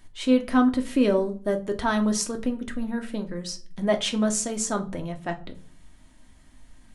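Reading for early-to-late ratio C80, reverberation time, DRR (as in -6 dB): 21.5 dB, 0.40 s, 3.5 dB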